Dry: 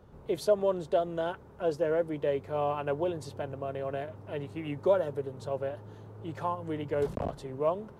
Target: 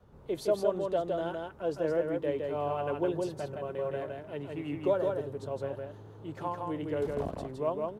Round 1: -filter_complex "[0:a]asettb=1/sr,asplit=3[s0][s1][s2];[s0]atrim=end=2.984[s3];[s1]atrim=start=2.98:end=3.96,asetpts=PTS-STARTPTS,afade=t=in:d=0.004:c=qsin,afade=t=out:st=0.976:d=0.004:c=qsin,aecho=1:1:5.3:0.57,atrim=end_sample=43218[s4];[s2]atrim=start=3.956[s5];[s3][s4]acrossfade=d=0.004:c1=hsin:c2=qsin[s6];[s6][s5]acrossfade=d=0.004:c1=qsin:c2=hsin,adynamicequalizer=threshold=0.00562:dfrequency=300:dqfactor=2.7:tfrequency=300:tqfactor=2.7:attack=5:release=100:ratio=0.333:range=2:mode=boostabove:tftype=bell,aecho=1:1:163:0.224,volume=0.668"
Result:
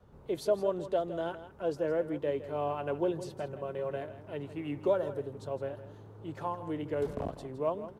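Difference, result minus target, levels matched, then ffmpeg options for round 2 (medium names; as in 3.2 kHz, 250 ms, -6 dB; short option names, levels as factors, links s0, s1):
echo-to-direct -9.5 dB
-filter_complex "[0:a]asettb=1/sr,asplit=3[s0][s1][s2];[s0]atrim=end=2.984[s3];[s1]atrim=start=2.98:end=3.96,asetpts=PTS-STARTPTS,afade=t=in:d=0.004:c=qsin,afade=t=out:st=0.976:d=0.004:c=qsin,aecho=1:1:5.3:0.57,atrim=end_sample=43218[s4];[s2]atrim=start=3.956[s5];[s3][s4]acrossfade=d=0.004:c1=hsin:c2=qsin[s6];[s6][s5]acrossfade=d=0.004:c1=qsin:c2=hsin,adynamicequalizer=threshold=0.00562:dfrequency=300:dqfactor=2.7:tfrequency=300:tqfactor=2.7:attack=5:release=100:ratio=0.333:range=2:mode=boostabove:tftype=bell,aecho=1:1:163:0.668,volume=0.668"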